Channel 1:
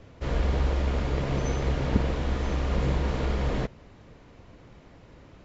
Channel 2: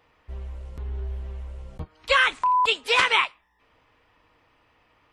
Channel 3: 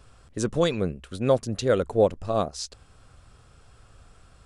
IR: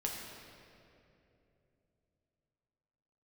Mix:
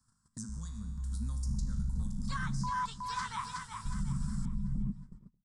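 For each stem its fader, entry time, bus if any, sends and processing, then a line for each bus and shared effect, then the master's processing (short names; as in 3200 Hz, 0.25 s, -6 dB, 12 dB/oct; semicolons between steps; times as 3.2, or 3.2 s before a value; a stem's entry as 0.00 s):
-2.0 dB, 1.25 s, muted 2.7–3.85, send -22 dB, echo send -15.5 dB, formant sharpening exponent 3; bell 65 Hz -10.5 dB 1.2 oct; comb 5.6 ms, depth 38%
-7.0 dB, 0.20 s, send -23.5 dB, echo send -5 dB, high shelf 5200 Hz -10 dB
-8.5 dB, 0.00 s, no send, echo send -20.5 dB, high shelf 5300 Hz +10.5 dB; resonator 53 Hz, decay 0.8 s, harmonics all, mix 80%; three-band squash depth 100%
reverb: on, RT60 2.9 s, pre-delay 6 ms
echo: feedback echo 0.368 s, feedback 36%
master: EQ curve 140 Hz 0 dB, 230 Hz +3 dB, 350 Hz -29 dB, 620 Hz -30 dB, 950 Hz -6 dB, 1700 Hz -10 dB, 2600 Hz -27 dB, 5000 Hz +2 dB, 8500 Hz +4 dB, 13000 Hz -5 dB; gate -45 dBFS, range -26 dB; limiter -25.5 dBFS, peak gain reduction 6 dB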